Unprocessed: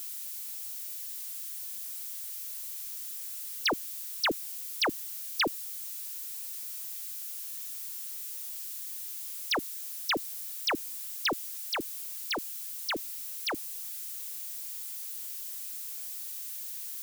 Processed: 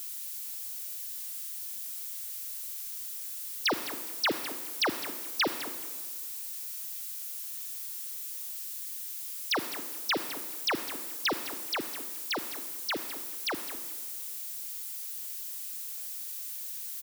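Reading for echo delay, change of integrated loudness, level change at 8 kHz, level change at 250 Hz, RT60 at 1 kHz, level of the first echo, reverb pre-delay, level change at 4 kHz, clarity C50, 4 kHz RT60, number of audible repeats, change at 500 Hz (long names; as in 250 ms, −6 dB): 207 ms, +0.5 dB, +0.5 dB, +1.0 dB, 1.6 s, −13.5 dB, 33 ms, +0.5 dB, 9.0 dB, 1.2 s, 2, +0.5 dB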